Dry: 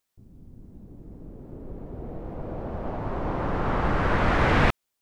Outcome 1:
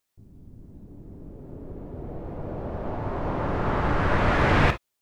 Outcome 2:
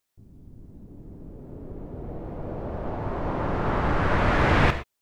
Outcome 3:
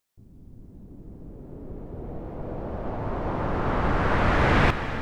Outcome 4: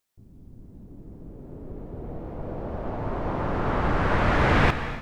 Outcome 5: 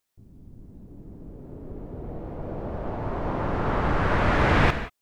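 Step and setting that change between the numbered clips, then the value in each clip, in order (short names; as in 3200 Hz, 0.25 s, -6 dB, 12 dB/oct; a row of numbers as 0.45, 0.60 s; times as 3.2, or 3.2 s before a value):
non-linear reverb, gate: 80, 140, 510, 330, 200 ms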